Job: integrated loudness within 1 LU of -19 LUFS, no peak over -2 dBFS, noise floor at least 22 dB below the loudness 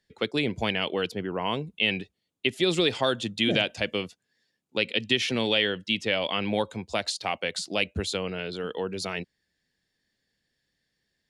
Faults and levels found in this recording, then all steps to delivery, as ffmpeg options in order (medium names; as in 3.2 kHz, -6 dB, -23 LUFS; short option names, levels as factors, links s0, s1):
loudness -27.5 LUFS; peak level -7.5 dBFS; loudness target -19.0 LUFS
-> -af "volume=2.66,alimiter=limit=0.794:level=0:latency=1"